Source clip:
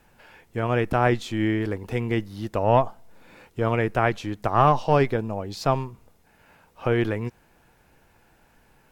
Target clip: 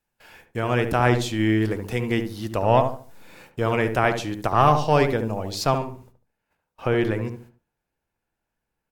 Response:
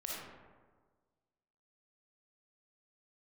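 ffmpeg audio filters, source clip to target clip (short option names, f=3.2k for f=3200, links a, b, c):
-filter_complex "[0:a]agate=range=-24dB:threshold=-51dB:ratio=16:detection=peak,asetnsamples=n=441:p=0,asendcmd='5.78 highshelf g 3',highshelf=f=3.2k:g=9.5,asplit=2[a][b];[b]adelay=73,lowpass=f=1k:p=1,volume=-5.5dB,asplit=2[c][d];[d]adelay=73,lowpass=f=1k:p=1,volume=0.36,asplit=2[e][f];[f]adelay=73,lowpass=f=1k:p=1,volume=0.36,asplit=2[g][h];[h]adelay=73,lowpass=f=1k:p=1,volume=0.36[i];[a][c][e][g][i]amix=inputs=5:normalize=0"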